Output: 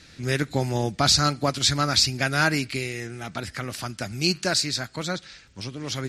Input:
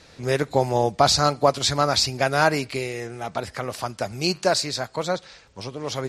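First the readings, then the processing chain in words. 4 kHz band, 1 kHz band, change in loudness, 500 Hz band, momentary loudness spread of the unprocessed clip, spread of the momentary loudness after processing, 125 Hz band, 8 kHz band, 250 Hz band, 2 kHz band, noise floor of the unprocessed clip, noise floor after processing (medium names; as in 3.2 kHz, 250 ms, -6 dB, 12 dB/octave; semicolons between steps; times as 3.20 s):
+1.5 dB, -6.0 dB, -1.0 dB, -7.5 dB, 12 LU, 14 LU, +1.5 dB, +1.5 dB, +0.5 dB, +1.0 dB, -52 dBFS, -52 dBFS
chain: high-order bell 680 Hz -10 dB; trim +1.5 dB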